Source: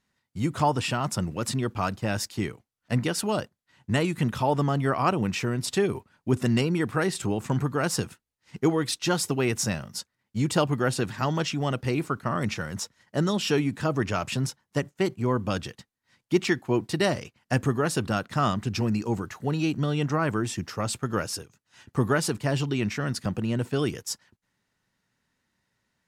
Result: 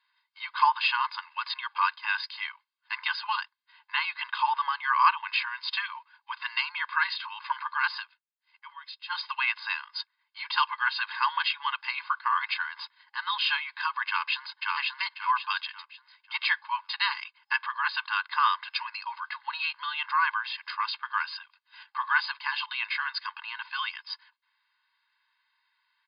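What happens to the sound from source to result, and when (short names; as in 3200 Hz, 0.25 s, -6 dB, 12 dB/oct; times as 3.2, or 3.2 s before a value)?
7.94–9.23 dip -15.5 dB, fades 0.15 s
14.07–14.64 echo throw 0.54 s, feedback 35%, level -1.5 dB
whole clip: de-esser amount 55%; comb 1.9 ms, depth 93%; FFT band-pass 820–5100 Hz; gain +3 dB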